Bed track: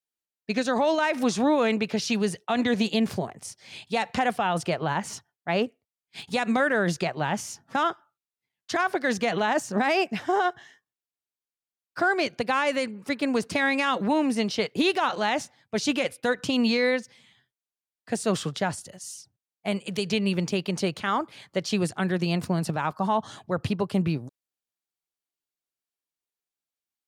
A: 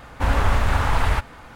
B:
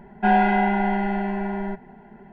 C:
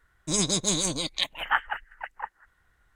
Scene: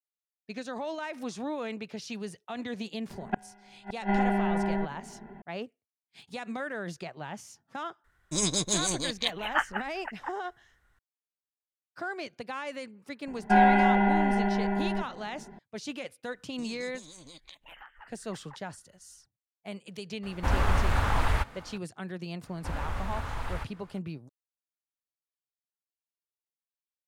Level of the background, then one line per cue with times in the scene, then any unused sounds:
bed track -12.5 dB
3.10 s: add B -1 dB + inverted gate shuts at -13 dBFS, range -37 dB
8.04 s: add C -2.5 dB
13.27 s: add B -2 dB
16.31 s: add C -8 dB + compression 16:1, threshold -37 dBFS
20.23 s: add A -6 dB
22.44 s: add A -15 dB

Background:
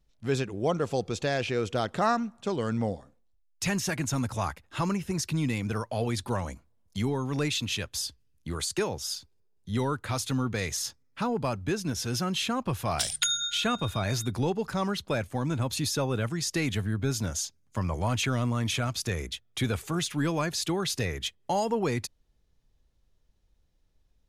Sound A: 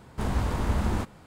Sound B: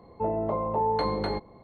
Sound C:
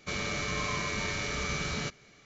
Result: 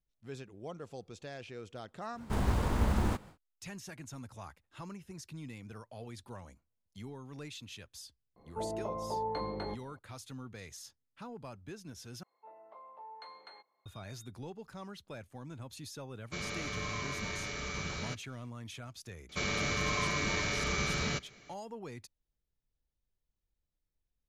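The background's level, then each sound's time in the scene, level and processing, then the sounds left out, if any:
background -17 dB
2.12 s: add A -3 dB, fades 0.10 s + short-mantissa float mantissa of 4-bit
8.36 s: add B -9.5 dB
12.23 s: replace with B -15.5 dB + high-pass 1.2 kHz
16.25 s: add C -6 dB + expander -54 dBFS
19.29 s: add C

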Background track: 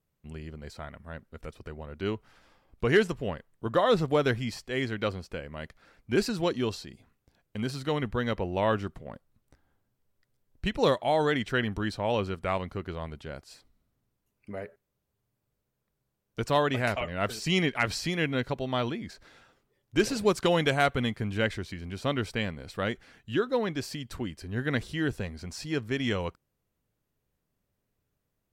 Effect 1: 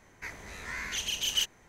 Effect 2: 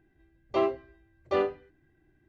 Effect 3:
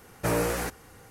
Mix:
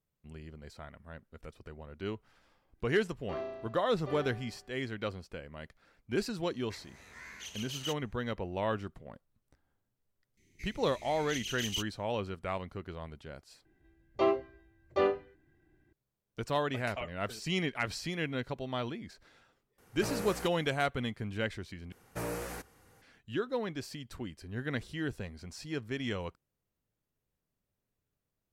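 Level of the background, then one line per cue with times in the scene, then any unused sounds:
background track -6.5 dB
2.75 s: add 2 -15 dB + flutter echo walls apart 6 m, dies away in 1.1 s
6.48 s: add 1 -11.5 dB + high-pass 59 Hz
10.37 s: add 1 -7 dB + Chebyshev band-stop 390–2100 Hz, order 4
13.65 s: replace with 2 -1.5 dB
19.78 s: add 3 -11.5 dB
21.92 s: replace with 3 -11 dB

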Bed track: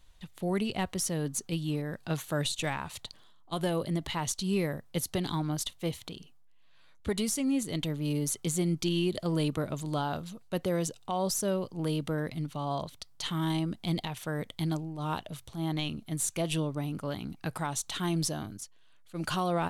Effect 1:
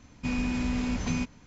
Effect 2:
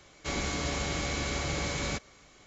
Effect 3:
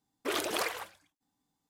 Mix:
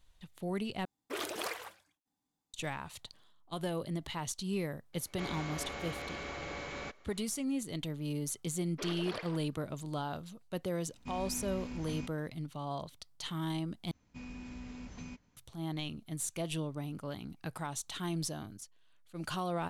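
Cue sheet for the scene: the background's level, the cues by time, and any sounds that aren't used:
bed track -6 dB
0.85 s: replace with 3 -6 dB
4.93 s: add 2 -6 dB + tone controls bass -9 dB, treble -14 dB
8.53 s: add 3 -10.5 dB + steep low-pass 5.2 kHz
10.82 s: add 1 -13.5 dB
13.91 s: replace with 1 -12.5 dB + flange 1.7 Hz, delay 2.1 ms, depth 6.7 ms, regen -86%

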